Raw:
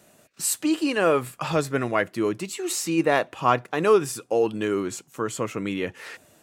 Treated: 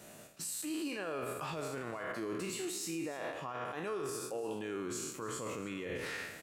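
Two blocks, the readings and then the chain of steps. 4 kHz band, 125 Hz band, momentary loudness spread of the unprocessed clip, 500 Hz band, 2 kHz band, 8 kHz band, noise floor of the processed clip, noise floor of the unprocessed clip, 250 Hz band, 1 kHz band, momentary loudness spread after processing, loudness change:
−11.0 dB, −14.5 dB, 10 LU, −16.0 dB, −13.0 dB, −11.0 dB, −53 dBFS, −59 dBFS, −14.5 dB, −16.0 dB, 3 LU, −14.5 dB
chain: peak hold with a decay on every bin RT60 0.79 s
reversed playback
downward compressor 6 to 1, threshold −31 dBFS, peak gain reduction 17 dB
reversed playback
brickwall limiter −32 dBFS, peak gain reduction 13 dB
surface crackle 71 per second −60 dBFS
single-tap delay 298 ms −16.5 dB
level +1 dB

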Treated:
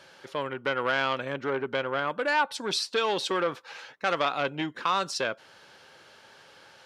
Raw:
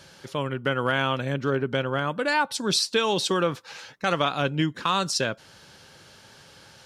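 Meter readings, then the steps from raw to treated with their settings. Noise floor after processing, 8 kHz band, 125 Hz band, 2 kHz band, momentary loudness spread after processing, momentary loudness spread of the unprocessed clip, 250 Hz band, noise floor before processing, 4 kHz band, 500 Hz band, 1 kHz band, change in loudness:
−55 dBFS, −8.0 dB, −13.0 dB, −1.5 dB, 7 LU, 7 LU, −7.5 dB, −52 dBFS, −4.5 dB, −2.5 dB, −1.5 dB, −3.0 dB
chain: bass and treble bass −14 dB, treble −9 dB
saturating transformer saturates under 1,400 Hz

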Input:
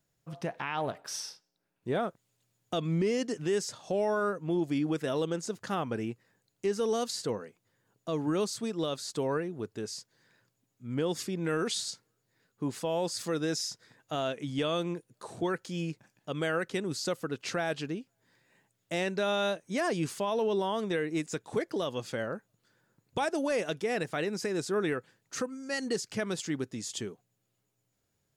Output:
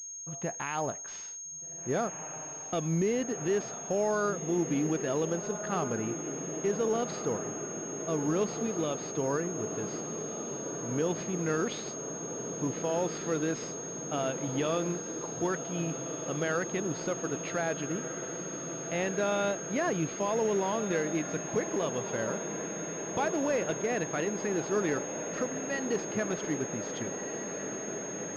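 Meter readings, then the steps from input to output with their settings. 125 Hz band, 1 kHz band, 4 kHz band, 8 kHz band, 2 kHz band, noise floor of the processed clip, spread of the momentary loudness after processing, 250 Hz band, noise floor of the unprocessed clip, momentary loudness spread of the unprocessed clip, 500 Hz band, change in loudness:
+1.0 dB, +1.0 dB, −6.5 dB, +8.5 dB, 0.0 dB, −42 dBFS, 7 LU, +1.0 dB, −79 dBFS, 10 LU, +1.0 dB, +0.5 dB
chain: feedback delay with all-pass diffusion 1,597 ms, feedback 80%, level −9.5 dB
switching amplifier with a slow clock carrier 6,500 Hz

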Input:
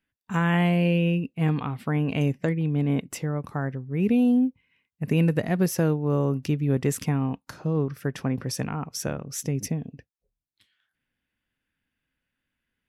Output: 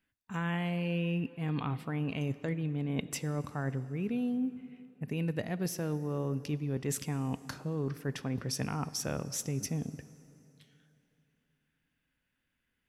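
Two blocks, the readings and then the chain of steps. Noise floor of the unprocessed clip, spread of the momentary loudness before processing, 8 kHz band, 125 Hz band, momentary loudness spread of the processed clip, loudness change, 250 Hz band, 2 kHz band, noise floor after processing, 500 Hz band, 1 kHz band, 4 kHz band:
−85 dBFS, 9 LU, −3.5 dB, −9.0 dB, 5 LU, −9.5 dB, −10.0 dB, −8.5 dB, −82 dBFS, −9.5 dB, −8.5 dB, −4.5 dB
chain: dynamic equaliser 4,200 Hz, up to +4 dB, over −49 dBFS, Q 0.81
reversed playback
downward compressor, threshold −31 dBFS, peak gain reduction 13 dB
reversed playback
dense smooth reverb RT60 3.1 s, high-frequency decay 0.8×, DRR 15 dB

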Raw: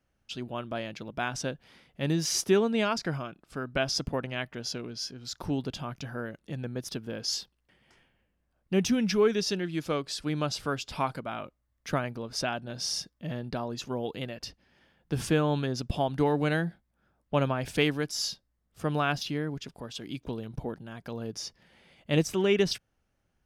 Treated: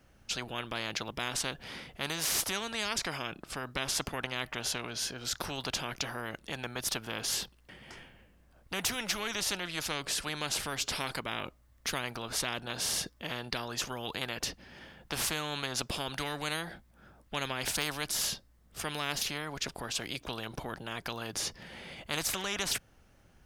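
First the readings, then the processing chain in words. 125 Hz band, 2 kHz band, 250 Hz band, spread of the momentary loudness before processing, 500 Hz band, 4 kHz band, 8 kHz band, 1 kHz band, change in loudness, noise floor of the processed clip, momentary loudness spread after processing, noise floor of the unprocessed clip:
−10.5 dB, +0.5 dB, −11.5 dB, 13 LU, −11.0 dB, +1.5 dB, +4.0 dB, −3.5 dB, −3.5 dB, −63 dBFS, 9 LU, −76 dBFS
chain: every bin compressed towards the loudest bin 4 to 1
level −2.5 dB

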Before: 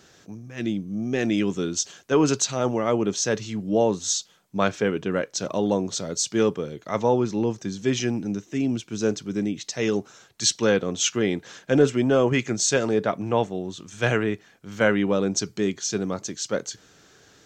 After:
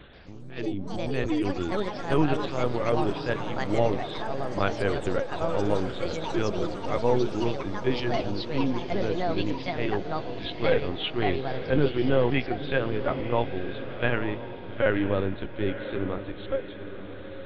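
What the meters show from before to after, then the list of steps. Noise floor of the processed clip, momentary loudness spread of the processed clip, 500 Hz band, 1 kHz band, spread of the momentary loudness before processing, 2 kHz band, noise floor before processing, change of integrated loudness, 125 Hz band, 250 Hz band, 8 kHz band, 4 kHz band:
−39 dBFS, 8 LU, −3.0 dB, 0.0 dB, 9 LU, −2.5 dB, −56 dBFS, −3.5 dB, −1.0 dB, −4.5 dB, below −25 dB, −6.0 dB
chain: upward compression, threshold −36 dBFS
notch comb filter 220 Hz
linear-prediction vocoder at 8 kHz pitch kept
delay with pitch and tempo change per echo 133 ms, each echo +5 semitones, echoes 3, each echo −6 dB
feedback delay with all-pass diffusion 972 ms, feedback 46%, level −10 dB
level −2 dB

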